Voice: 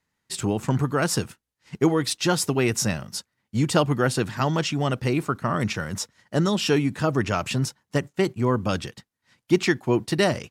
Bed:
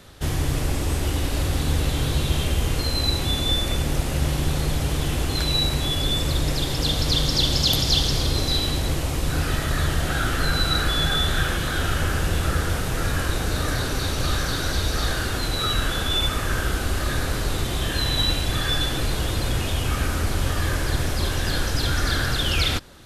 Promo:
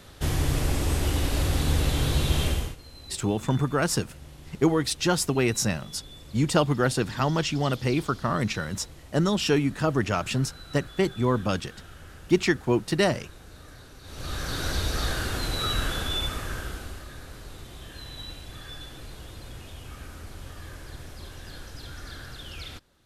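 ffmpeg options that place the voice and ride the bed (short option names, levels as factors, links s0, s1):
-filter_complex "[0:a]adelay=2800,volume=0.841[s0];[1:a]volume=7.5,afade=t=out:st=2.47:d=0.29:silence=0.0841395,afade=t=in:st=14.03:d=0.64:silence=0.112202,afade=t=out:st=15.83:d=1.24:silence=0.199526[s1];[s0][s1]amix=inputs=2:normalize=0"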